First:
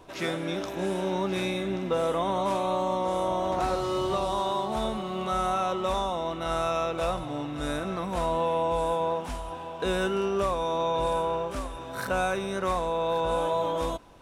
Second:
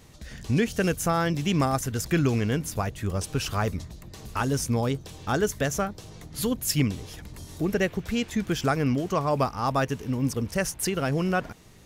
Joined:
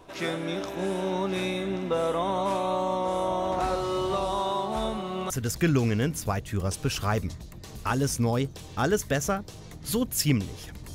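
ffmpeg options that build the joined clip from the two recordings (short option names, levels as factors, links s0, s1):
-filter_complex "[0:a]apad=whole_dur=10.94,atrim=end=10.94,atrim=end=5.302[s0];[1:a]atrim=start=1.798:end=7.44[s1];[s0][s1]acrossfade=d=0.004:c1=hsin:c2=hsin"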